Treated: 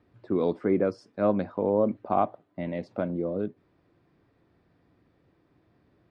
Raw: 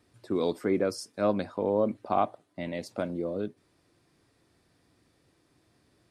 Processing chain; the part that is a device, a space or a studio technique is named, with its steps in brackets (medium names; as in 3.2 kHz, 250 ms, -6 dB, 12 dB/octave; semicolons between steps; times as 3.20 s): phone in a pocket (low-pass 3.2 kHz 12 dB/octave; peaking EQ 180 Hz +3 dB 0.25 oct; treble shelf 2.2 kHz -9 dB); trim +2.5 dB